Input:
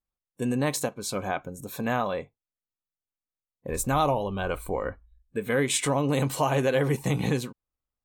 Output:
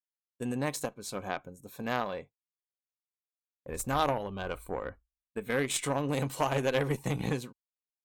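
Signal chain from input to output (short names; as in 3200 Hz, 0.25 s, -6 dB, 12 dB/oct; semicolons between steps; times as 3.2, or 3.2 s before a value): added harmonics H 2 -19 dB, 3 -16 dB, 7 -40 dB, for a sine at -12 dBFS; expander -42 dBFS; gain -1.5 dB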